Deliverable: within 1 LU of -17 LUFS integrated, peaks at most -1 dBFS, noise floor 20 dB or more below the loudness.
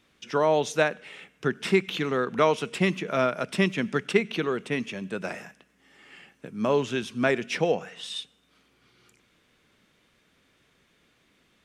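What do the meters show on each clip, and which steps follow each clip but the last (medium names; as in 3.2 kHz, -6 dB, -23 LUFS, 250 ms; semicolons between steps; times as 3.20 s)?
loudness -26.5 LUFS; peak level -6.5 dBFS; loudness target -17.0 LUFS
-> trim +9.5 dB; peak limiter -1 dBFS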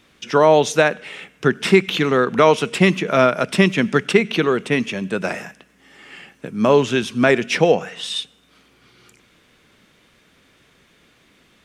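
loudness -17.5 LUFS; peak level -1.0 dBFS; noise floor -57 dBFS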